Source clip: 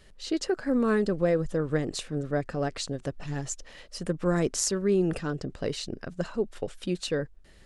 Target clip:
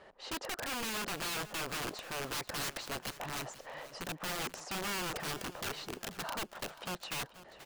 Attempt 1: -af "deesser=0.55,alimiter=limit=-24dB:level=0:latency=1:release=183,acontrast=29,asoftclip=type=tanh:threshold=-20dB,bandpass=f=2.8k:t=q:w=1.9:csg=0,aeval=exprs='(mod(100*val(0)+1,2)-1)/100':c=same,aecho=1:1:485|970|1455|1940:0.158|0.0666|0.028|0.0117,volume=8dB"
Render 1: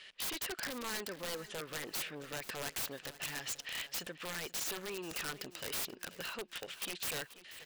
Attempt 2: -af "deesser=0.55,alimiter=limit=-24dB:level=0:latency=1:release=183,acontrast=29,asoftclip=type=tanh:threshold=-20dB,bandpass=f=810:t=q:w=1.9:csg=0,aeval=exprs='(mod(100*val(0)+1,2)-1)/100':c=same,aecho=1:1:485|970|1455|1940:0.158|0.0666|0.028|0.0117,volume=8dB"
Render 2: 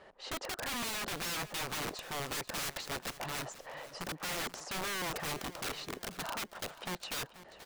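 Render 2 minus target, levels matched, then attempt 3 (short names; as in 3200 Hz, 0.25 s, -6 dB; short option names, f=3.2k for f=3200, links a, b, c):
soft clip: distortion -8 dB
-af "deesser=0.55,alimiter=limit=-24dB:level=0:latency=1:release=183,acontrast=29,asoftclip=type=tanh:threshold=-26dB,bandpass=f=810:t=q:w=1.9:csg=0,aeval=exprs='(mod(100*val(0)+1,2)-1)/100':c=same,aecho=1:1:485|970|1455|1940:0.158|0.0666|0.028|0.0117,volume=8dB"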